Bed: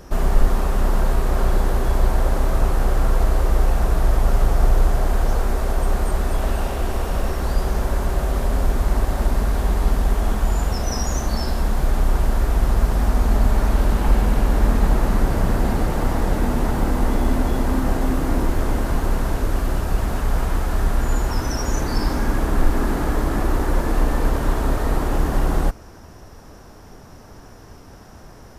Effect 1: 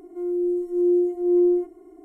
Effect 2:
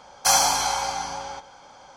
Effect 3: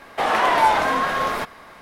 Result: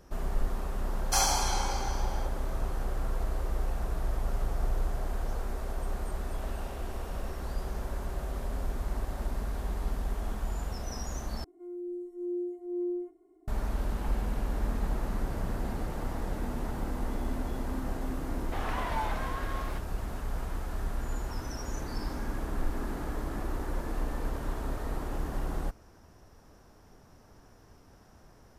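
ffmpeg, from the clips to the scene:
ffmpeg -i bed.wav -i cue0.wav -i cue1.wav -i cue2.wav -filter_complex "[0:a]volume=-14dB,asplit=2[link_01][link_02];[link_01]atrim=end=11.444[link_03];[1:a]atrim=end=2.04,asetpts=PTS-STARTPTS,volume=-14.5dB[link_04];[link_02]atrim=start=13.476[link_05];[2:a]atrim=end=1.96,asetpts=PTS-STARTPTS,volume=-8.5dB,afade=type=in:duration=0.004:curve=hsin,afade=type=out:start_time=1.956:duration=0.004:curve=hsin,adelay=870[link_06];[3:a]atrim=end=1.81,asetpts=PTS-STARTPTS,volume=-17.5dB,afade=type=in:duration=0.004:curve=hsin,afade=type=out:start_time=1.806:duration=0.004:curve=hsin,adelay=18340[link_07];[link_03][link_04]acrossfade=duration=0.004:curve1=hsin:curve2=hsin[link_08];[link_08][link_05]acrossfade=duration=0.004:curve1=hsin:curve2=hsin[link_09];[link_09][link_06][link_07]amix=inputs=3:normalize=0" out.wav

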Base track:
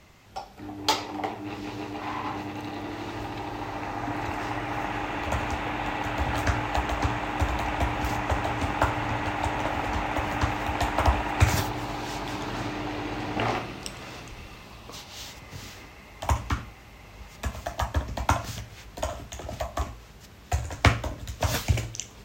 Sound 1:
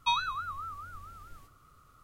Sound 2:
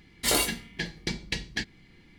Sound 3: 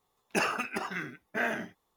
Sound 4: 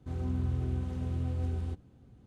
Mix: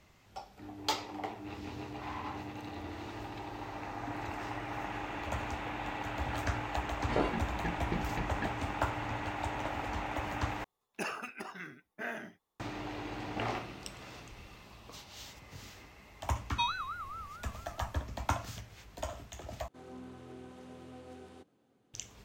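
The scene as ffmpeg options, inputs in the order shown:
ffmpeg -i bed.wav -i cue0.wav -i cue1.wav -i cue2.wav -i cue3.wav -filter_complex "[4:a]asplit=2[link_01][link_02];[0:a]volume=-8.5dB[link_03];[link_01]asplit=2[link_04][link_05];[link_05]adelay=3.3,afreqshift=1.6[link_06];[link_04][link_06]amix=inputs=2:normalize=1[link_07];[2:a]lowpass=1200[link_08];[link_02]highpass=370[link_09];[link_03]asplit=3[link_10][link_11][link_12];[link_10]atrim=end=10.644[link_13];[3:a]atrim=end=1.96,asetpts=PTS-STARTPTS,volume=-9dB[link_14];[link_11]atrim=start=12.596:end=19.684[link_15];[link_09]atrim=end=2.26,asetpts=PTS-STARTPTS,volume=-3dB[link_16];[link_12]atrim=start=21.936[link_17];[link_07]atrim=end=2.26,asetpts=PTS-STARTPTS,volume=-17dB,afade=type=in:duration=0.004:curve=hsin,afade=type=out:start_time=2.256:duration=0.004:curve=hsin,adelay=1370[link_18];[link_08]atrim=end=2.18,asetpts=PTS-STARTPTS,volume=-1.5dB,afade=type=in:duration=0.004:curve=hsin,afade=type=out:start_time=2.176:duration=0.004:curve=hsin,adelay=6850[link_19];[1:a]atrim=end=2.03,asetpts=PTS-STARTPTS,volume=-4dB,afade=type=in:duration=0.004:curve=hsin,afade=type=out:start_time=2.026:duration=0.004:curve=hsin,adelay=728532S[link_20];[link_13][link_14]acrossfade=duration=0.004:curve1=hsin:curve2=hsin[link_21];[link_21][link_15]acrossfade=duration=0.004:curve1=hsin:curve2=hsin[link_22];[link_22][link_16]acrossfade=duration=0.004:curve1=hsin:curve2=hsin[link_23];[link_23][link_17]acrossfade=duration=0.004:curve1=hsin:curve2=hsin[link_24];[link_24][link_18][link_19][link_20]amix=inputs=4:normalize=0" out.wav

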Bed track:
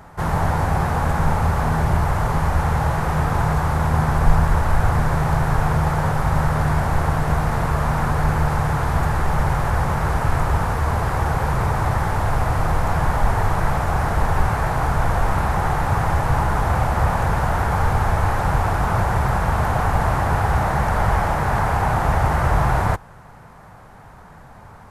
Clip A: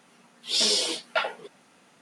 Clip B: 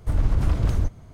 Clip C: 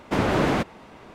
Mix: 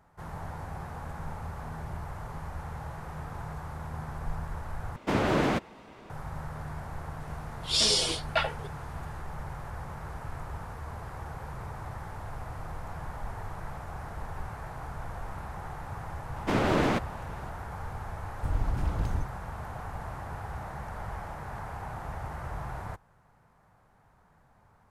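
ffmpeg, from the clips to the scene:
ffmpeg -i bed.wav -i cue0.wav -i cue1.wav -i cue2.wav -filter_complex "[3:a]asplit=2[link_01][link_02];[0:a]volume=-19.5dB[link_03];[link_02]aeval=exprs='if(lt(val(0),0),0.708*val(0),val(0))':channel_layout=same[link_04];[link_03]asplit=2[link_05][link_06];[link_05]atrim=end=4.964[link_07];[link_01]atrim=end=1.14,asetpts=PTS-STARTPTS,volume=-4dB[link_08];[link_06]atrim=start=6.096[link_09];[1:a]atrim=end=2.01,asetpts=PTS-STARTPTS,volume=-1.5dB,afade=type=in:duration=0.004:curve=hsin,afade=type=out:start_time=2.006:duration=0.004:curve=hsin,adelay=7200[link_10];[link_04]atrim=end=1.14,asetpts=PTS-STARTPTS,volume=-2.5dB,afade=type=in:duration=0.004:curve=hsin,afade=type=out:start_time=1.136:duration=0.004:curve=hsin,adelay=721476S[link_11];[2:a]atrim=end=1.13,asetpts=PTS-STARTPTS,volume=-8.5dB,afade=type=in:duration=0.004:curve=hsin,afade=type=out:start_time=1.126:duration=0.004:curve=hsin,adelay=18360[link_12];[link_07][link_08]acrossfade=duration=0.004:curve1=hsin:curve2=hsin[link_13];[link_13][link_09]acrossfade=duration=0.004:curve1=hsin:curve2=hsin[link_14];[link_14][link_10][link_11][link_12]amix=inputs=4:normalize=0" out.wav

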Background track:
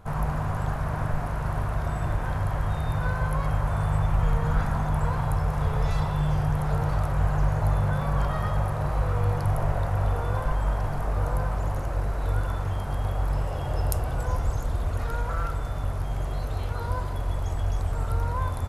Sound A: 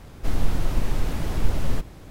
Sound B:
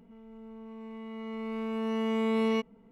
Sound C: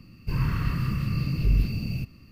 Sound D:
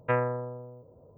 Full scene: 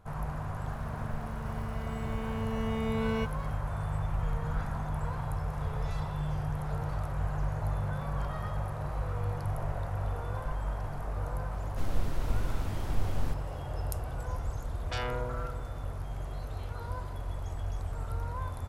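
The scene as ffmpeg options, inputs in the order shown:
ffmpeg -i bed.wav -i cue0.wav -i cue1.wav -i cue2.wav -i cue3.wav -filter_complex "[0:a]volume=-8.5dB[link_01];[2:a]aeval=exprs='val(0)+0.5*0.00596*sgn(val(0))':channel_layout=same[link_02];[4:a]aeval=exprs='0.178*sin(PI/2*5.01*val(0)/0.178)':channel_layout=same[link_03];[link_02]atrim=end=2.91,asetpts=PTS-STARTPTS,volume=-5dB,afade=type=in:duration=0.004:curve=hsin,afade=type=out:start_time=2.906:duration=0.004:curve=hsin,adelay=640[link_04];[1:a]atrim=end=2.1,asetpts=PTS-STARTPTS,volume=-9.5dB,afade=type=in:duration=0.004:curve=hsin,afade=type=out:start_time=2.096:duration=0.004:curve=hsin,adelay=11530[link_05];[link_03]atrim=end=1.17,asetpts=PTS-STARTPTS,volume=-17.5dB,afade=type=in:duration=0.004:curve=hsin,afade=type=out:start_time=1.166:duration=0.004:curve=hsin,adelay=14830[link_06];[link_01][link_04][link_05][link_06]amix=inputs=4:normalize=0" out.wav

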